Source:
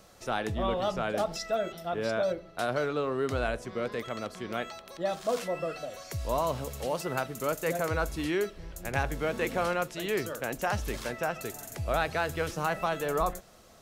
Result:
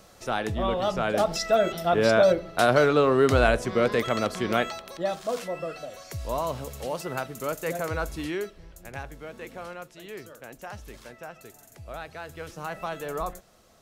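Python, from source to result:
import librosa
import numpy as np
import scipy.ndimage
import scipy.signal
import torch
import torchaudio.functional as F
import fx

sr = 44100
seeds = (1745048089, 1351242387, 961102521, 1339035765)

y = fx.gain(x, sr, db=fx.line((0.78, 3.0), (1.82, 10.0), (4.52, 10.0), (5.27, 0.0), (8.18, 0.0), (9.19, -10.0), (12.16, -10.0), (12.88, -3.0)))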